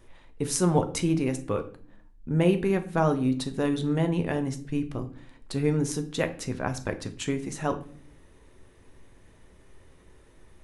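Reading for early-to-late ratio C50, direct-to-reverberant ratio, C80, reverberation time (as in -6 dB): 14.0 dB, 7.5 dB, 18.0 dB, not exponential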